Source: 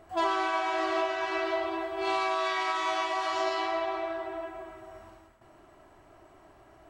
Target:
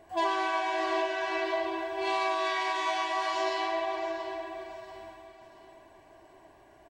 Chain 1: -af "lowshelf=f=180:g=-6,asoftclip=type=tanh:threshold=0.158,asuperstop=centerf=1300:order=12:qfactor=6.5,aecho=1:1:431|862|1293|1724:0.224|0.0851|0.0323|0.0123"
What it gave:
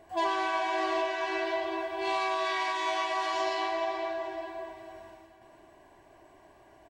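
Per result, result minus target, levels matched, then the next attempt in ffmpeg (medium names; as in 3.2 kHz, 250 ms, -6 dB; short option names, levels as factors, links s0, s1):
saturation: distortion +18 dB; echo 251 ms early
-af "lowshelf=f=180:g=-6,asoftclip=type=tanh:threshold=0.473,asuperstop=centerf=1300:order=12:qfactor=6.5,aecho=1:1:431|862|1293|1724:0.224|0.0851|0.0323|0.0123"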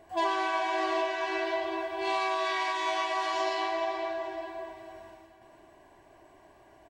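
echo 251 ms early
-af "lowshelf=f=180:g=-6,asoftclip=type=tanh:threshold=0.473,asuperstop=centerf=1300:order=12:qfactor=6.5,aecho=1:1:682|1364|2046|2728:0.224|0.0851|0.0323|0.0123"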